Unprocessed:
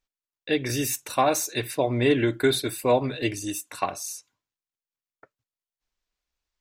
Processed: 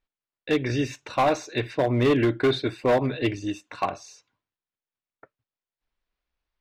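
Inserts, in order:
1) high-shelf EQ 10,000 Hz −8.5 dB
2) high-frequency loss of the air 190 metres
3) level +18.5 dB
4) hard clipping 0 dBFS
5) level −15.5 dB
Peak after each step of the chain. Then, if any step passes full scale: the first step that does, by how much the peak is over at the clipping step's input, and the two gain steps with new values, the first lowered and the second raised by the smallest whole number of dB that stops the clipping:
−9.0, −10.0, +8.5, 0.0, −15.5 dBFS
step 3, 8.5 dB
step 3 +9.5 dB, step 5 −6.5 dB

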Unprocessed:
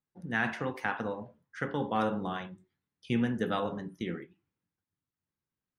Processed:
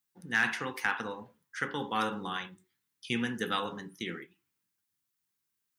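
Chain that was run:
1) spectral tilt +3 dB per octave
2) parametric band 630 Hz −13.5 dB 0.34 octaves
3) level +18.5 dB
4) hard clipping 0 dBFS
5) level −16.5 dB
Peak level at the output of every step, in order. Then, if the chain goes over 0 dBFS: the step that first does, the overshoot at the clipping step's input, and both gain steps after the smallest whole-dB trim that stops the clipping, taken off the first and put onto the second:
−14.0, −15.0, +3.5, 0.0, −16.5 dBFS
step 3, 3.5 dB
step 3 +14.5 dB, step 5 −12.5 dB

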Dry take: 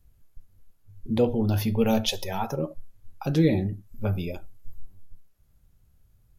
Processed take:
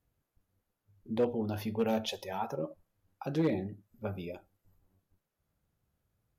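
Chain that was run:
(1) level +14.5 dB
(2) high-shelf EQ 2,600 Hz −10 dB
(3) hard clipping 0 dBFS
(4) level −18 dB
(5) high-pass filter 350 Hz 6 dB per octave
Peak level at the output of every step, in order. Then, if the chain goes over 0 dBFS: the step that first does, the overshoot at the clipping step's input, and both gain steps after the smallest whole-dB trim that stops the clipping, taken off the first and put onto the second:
+4.0, +3.5, 0.0, −18.0, −17.5 dBFS
step 1, 3.5 dB
step 1 +10.5 dB, step 4 −14 dB

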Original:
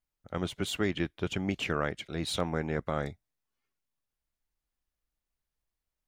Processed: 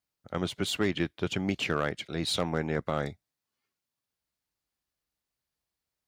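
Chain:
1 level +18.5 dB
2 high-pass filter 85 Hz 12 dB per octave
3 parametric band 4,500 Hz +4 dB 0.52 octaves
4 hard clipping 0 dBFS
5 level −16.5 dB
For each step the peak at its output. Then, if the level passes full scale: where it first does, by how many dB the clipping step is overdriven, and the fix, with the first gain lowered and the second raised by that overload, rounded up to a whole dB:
+4.0, +4.0, +4.0, 0.0, −16.5 dBFS
step 1, 4.0 dB
step 1 +14.5 dB, step 5 −12.5 dB

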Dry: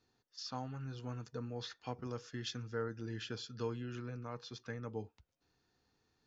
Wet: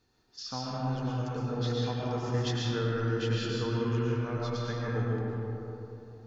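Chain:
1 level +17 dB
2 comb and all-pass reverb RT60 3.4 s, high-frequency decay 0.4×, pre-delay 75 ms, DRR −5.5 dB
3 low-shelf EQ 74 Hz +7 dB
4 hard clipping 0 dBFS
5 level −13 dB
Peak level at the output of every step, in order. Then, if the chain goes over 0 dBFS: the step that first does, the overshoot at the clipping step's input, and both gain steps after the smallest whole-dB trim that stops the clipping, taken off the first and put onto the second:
−9.0, −6.5, −5.0, −5.0, −18.0 dBFS
no step passes full scale

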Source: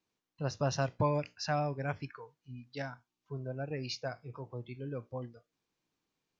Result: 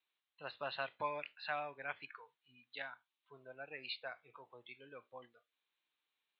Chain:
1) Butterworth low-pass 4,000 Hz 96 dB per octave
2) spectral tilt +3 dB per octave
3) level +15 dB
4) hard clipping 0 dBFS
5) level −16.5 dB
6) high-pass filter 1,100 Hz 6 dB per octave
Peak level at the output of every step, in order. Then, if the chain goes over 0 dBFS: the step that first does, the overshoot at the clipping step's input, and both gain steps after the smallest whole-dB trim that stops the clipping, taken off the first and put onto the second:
−18.0, −18.5, −3.5, −3.5, −20.0, −23.5 dBFS
no step passes full scale

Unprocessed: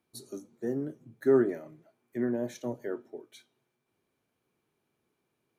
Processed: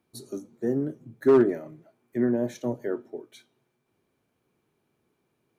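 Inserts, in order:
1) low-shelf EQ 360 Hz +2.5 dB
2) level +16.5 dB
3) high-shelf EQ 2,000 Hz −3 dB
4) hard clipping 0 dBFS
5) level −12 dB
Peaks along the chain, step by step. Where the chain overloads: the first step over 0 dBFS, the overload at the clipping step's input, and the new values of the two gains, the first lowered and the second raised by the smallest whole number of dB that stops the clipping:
−12.5, +4.0, +4.0, 0.0, −12.0 dBFS
step 2, 4.0 dB
step 2 +12.5 dB, step 5 −8 dB

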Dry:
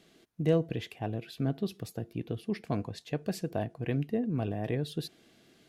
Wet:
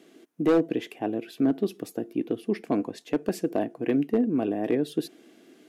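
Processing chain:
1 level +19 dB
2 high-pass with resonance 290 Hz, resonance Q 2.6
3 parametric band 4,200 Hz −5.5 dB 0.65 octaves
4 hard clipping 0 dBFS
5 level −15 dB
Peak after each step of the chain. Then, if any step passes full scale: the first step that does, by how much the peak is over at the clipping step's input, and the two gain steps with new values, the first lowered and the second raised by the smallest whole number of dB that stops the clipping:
+4.5, +8.0, +8.0, 0.0, −15.0 dBFS
step 1, 8.0 dB
step 1 +11 dB, step 5 −7 dB

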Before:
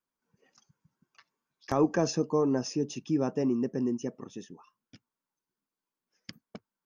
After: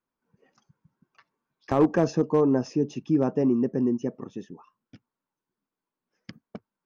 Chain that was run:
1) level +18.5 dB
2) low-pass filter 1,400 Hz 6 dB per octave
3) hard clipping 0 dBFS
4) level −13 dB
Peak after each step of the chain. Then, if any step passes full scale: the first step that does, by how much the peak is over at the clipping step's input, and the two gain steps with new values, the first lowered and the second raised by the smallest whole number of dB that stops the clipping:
+3.5, +3.5, 0.0, −13.0 dBFS
step 1, 3.5 dB
step 1 +14.5 dB, step 4 −9 dB

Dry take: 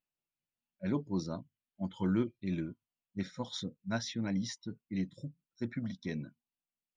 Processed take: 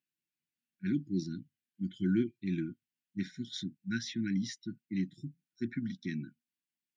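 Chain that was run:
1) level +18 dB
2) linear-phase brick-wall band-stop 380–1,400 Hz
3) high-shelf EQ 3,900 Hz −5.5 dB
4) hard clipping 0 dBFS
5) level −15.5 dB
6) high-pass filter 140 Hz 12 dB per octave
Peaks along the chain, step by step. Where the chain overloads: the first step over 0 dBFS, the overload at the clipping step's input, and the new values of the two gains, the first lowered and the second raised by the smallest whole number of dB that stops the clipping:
−1.0, −2.5, −2.5, −2.5, −18.0, −18.5 dBFS
no step passes full scale

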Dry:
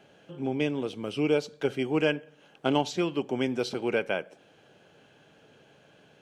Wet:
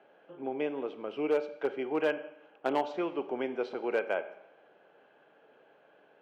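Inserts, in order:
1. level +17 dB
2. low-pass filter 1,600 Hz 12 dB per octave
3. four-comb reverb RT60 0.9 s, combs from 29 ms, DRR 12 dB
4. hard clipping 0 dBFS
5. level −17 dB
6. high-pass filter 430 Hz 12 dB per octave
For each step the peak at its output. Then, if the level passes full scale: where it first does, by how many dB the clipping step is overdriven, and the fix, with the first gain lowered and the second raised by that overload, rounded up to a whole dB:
+4.5, +4.0, +4.0, 0.0, −17.0, −16.0 dBFS
step 1, 4.0 dB
step 1 +13 dB, step 5 −13 dB

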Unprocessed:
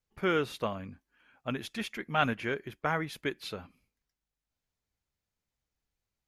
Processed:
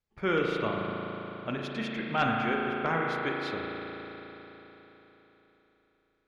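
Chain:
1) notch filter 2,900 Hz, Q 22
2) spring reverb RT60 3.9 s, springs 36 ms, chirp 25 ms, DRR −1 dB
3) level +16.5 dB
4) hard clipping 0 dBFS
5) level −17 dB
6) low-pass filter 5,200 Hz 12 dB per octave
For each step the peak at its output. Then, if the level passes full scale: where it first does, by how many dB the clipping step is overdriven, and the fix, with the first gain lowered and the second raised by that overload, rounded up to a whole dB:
−12.0, −11.5, +5.0, 0.0, −17.0, −16.5 dBFS
step 3, 5.0 dB
step 3 +11.5 dB, step 5 −12 dB

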